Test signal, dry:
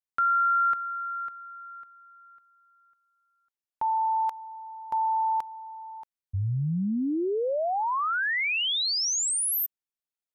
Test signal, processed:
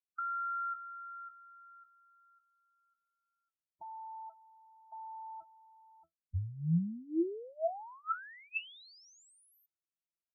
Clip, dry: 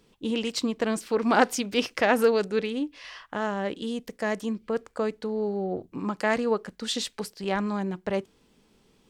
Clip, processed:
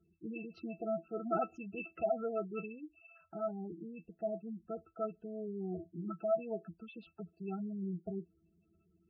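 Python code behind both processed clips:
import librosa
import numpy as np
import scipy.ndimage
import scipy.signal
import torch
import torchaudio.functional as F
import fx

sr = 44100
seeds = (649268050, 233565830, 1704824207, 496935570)

y = fx.octave_resonator(x, sr, note='E', decay_s=0.13)
y = fx.spec_gate(y, sr, threshold_db=-15, keep='strong')
y = y * 10.0 ** (1.0 / 20.0)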